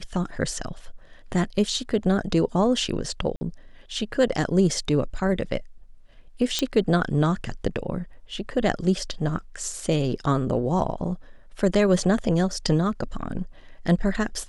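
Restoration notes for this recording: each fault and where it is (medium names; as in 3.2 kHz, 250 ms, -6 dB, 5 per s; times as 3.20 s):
3.36–3.41 s: dropout 50 ms
6.59 s: pop -8 dBFS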